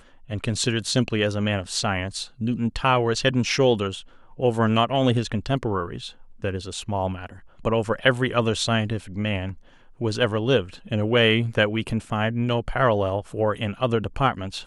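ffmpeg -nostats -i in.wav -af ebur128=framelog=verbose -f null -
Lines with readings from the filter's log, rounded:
Integrated loudness:
  I:         -23.6 LUFS
  Threshold: -33.9 LUFS
Loudness range:
  LRA:         3.1 LU
  Threshold: -43.8 LUFS
  LRA low:   -25.5 LUFS
  LRA high:  -22.5 LUFS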